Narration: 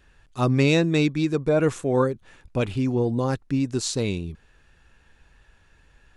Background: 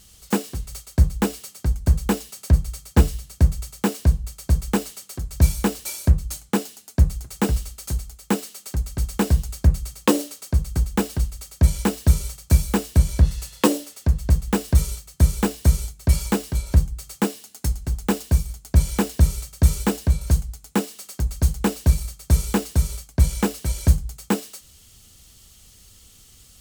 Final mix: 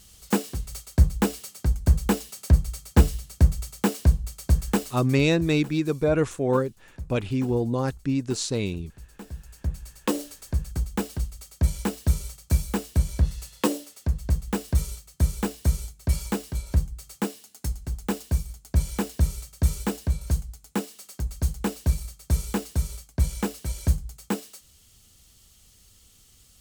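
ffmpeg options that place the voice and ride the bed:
-filter_complex "[0:a]adelay=4550,volume=-1.5dB[a];[1:a]volume=14dB,afade=t=out:st=4.69:d=0.72:silence=0.1,afade=t=in:st=9.29:d=1.02:silence=0.16788[b];[a][b]amix=inputs=2:normalize=0"

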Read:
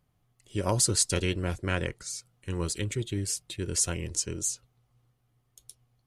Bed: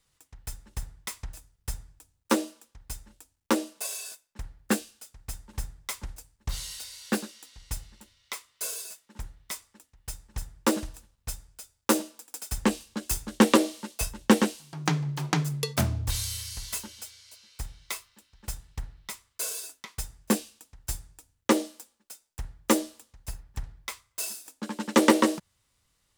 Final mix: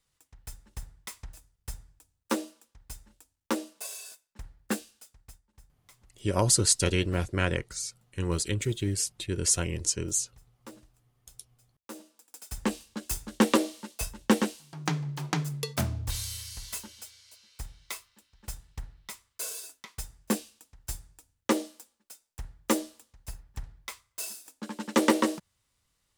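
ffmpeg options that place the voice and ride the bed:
-filter_complex "[0:a]adelay=5700,volume=2dB[a];[1:a]volume=14.5dB,afade=t=out:st=5.04:d=0.37:silence=0.125893,afade=t=in:st=11.88:d=0.93:silence=0.105925[b];[a][b]amix=inputs=2:normalize=0"

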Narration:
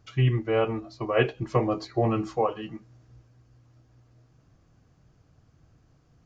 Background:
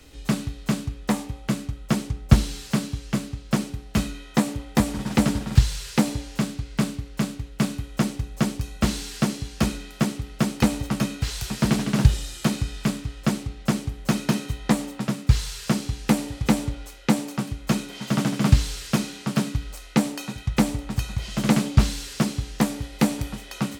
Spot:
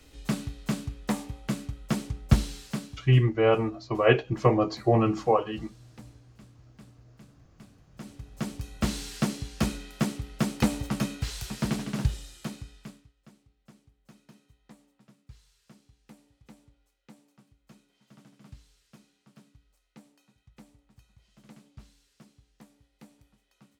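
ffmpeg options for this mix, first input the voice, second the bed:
-filter_complex "[0:a]adelay=2900,volume=2.5dB[a];[1:a]volume=19dB,afade=t=out:st=2.42:d=0.82:silence=0.0668344,afade=t=in:st=7.9:d=1.08:silence=0.0595662,afade=t=out:st=10.99:d=2.14:silence=0.0398107[b];[a][b]amix=inputs=2:normalize=0"

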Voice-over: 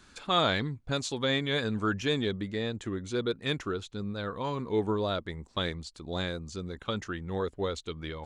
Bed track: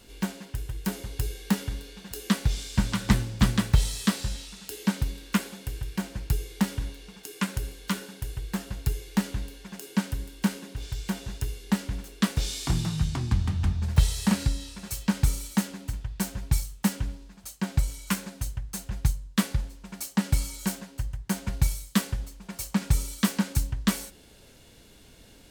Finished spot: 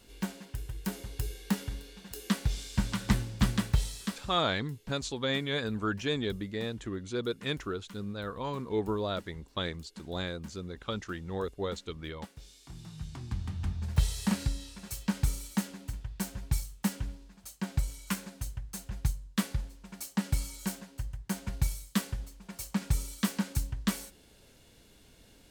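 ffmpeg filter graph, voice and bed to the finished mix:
-filter_complex "[0:a]adelay=4000,volume=-2.5dB[a];[1:a]volume=12dB,afade=t=out:st=3.62:d=0.83:silence=0.133352,afade=t=in:st=12.7:d=1.36:silence=0.141254[b];[a][b]amix=inputs=2:normalize=0"

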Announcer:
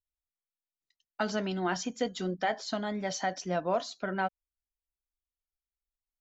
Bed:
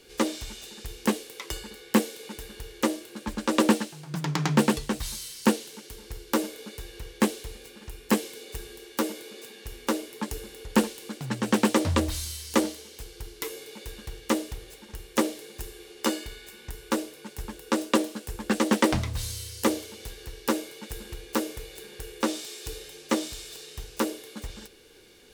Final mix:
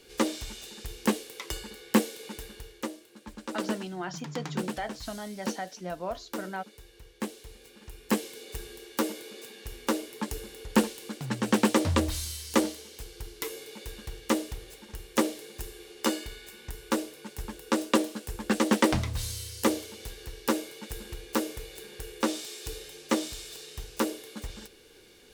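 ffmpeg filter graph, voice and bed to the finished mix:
-filter_complex "[0:a]adelay=2350,volume=-5dB[a];[1:a]volume=9.5dB,afade=t=out:st=2.39:d=0.51:silence=0.298538,afade=t=in:st=7.21:d=1.38:silence=0.298538[b];[a][b]amix=inputs=2:normalize=0"

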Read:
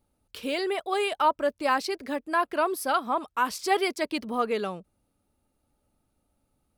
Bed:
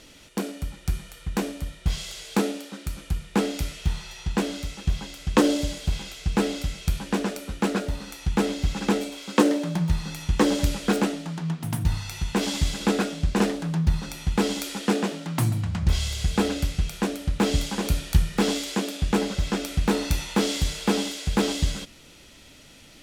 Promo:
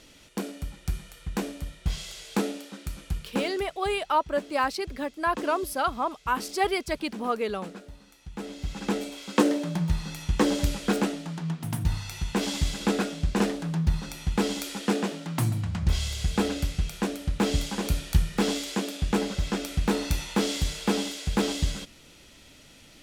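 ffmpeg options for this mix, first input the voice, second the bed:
-filter_complex "[0:a]adelay=2900,volume=-1dB[a];[1:a]volume=11dB,afade=t=out:st=3.17:d=0.49:silence=0.211349,afade=t=in:st=8.32:d=0.84:silence=0.188365[b];[a][b]amix=inputs=2:normalize=0"

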